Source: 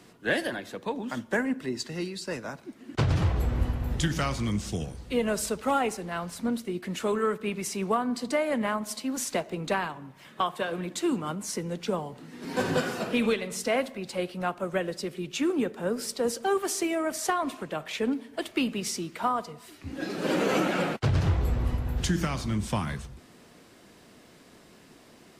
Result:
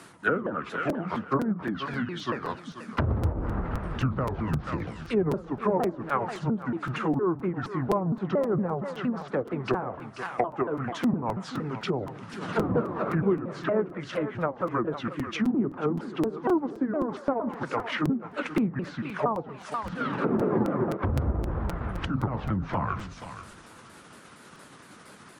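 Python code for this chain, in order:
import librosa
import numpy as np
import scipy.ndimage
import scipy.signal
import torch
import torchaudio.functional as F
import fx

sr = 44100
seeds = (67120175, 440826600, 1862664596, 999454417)

y = fx.pitch_ramps(x, sr, semitones=-8.5, every_ms=232)
y = fx.highpass(y, sr, hz=110.0, slope=6)
y = fx.peak_eq(y, sr, hz=9800.0, db=11.5, octaves=0.36)
y = fx.echo_feedback(y, sr, ms=484, feedback_pct=17, wet_db=-14)
y = fx.env_lowpass_down(y, sr, base_hz=560.0, full_db=-26.5)
y = fx.peak_eq(y, sr, hz=1300.0, db=9.5, octaves=0.91)
y = fx.buffer_crackle(y, sr, first_s=0.89, period_s=0.26, block=256, kind='repeat')
y = y * librosa.db_to_amplitude(3.5)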